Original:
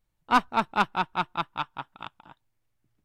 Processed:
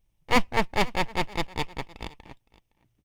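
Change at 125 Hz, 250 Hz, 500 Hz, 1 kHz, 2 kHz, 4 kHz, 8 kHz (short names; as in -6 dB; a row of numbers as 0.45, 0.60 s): +6.0 dB, +2.5 dB, +6.5 dB, -3.5 dB, +1.5 dB, +4.0 dB, n/a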